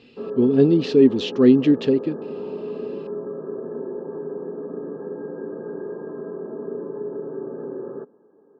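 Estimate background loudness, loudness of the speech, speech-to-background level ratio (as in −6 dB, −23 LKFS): −32.0 LKFS, −17.5 LKFS, 14.5 dB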